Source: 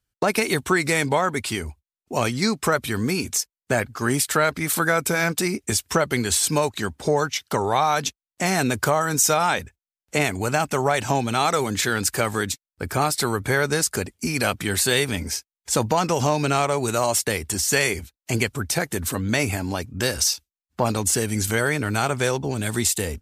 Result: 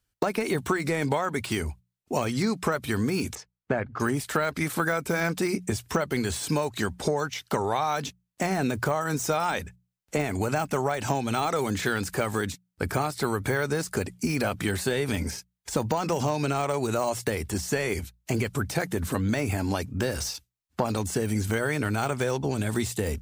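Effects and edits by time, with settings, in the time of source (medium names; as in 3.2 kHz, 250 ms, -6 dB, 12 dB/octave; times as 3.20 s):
3.35–4.00 s: Bessel low-pass 1.5 kHz
whole clip: de-esser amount 70%; hum notches 60/120/180 Hz; compression, threshold -24 dBFS; trim +2 dB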